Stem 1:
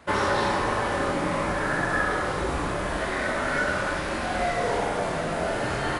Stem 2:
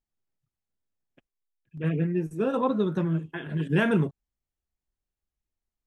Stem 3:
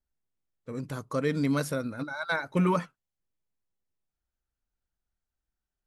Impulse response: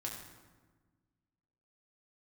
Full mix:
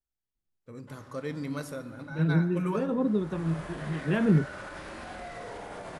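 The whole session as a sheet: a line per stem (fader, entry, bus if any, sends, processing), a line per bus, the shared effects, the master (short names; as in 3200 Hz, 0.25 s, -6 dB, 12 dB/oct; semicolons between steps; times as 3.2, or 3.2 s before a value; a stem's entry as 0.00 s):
-12.5 dB, 0.80 s, send -19 dB, limiter -20 dBFS, peak gain reduction 8 dB; auto duck -22 dB, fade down 1.15 s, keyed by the third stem
-4.5 dB, 0.35 s, no send, low shelf 470 Hz +8.5 dB; harmonic tremolo 1.5 Hz, depth 70%, crossover 510 Hz
-10.5 dB, 0.00 s, send -4.5 dB, dry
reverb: on, RT60 1.4 s, pre-delay 4 ms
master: dry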